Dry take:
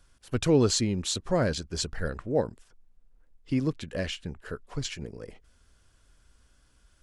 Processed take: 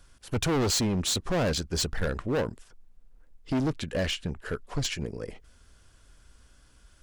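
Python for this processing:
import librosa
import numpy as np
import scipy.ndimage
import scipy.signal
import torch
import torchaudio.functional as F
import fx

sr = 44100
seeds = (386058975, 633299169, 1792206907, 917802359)

y = np.clip(x, -10.0 ** (-28.5 / 20.0), 10.0 ** (-28.5 / 20.0))
y = y * librosa.db_to_amplitude(5.0)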